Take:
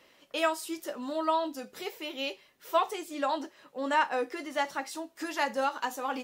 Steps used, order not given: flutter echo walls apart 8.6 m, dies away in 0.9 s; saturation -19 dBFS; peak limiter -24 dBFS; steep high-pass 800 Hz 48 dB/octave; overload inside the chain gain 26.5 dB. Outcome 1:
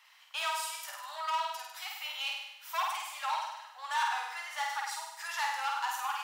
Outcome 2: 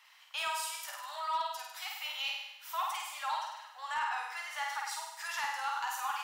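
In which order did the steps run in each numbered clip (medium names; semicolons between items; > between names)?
overload inside the chain > peak limiter > flutter echo > saturation > steep high-pass; peak limiter > flutter echo > saturation > steep high-pass > overload inside the chain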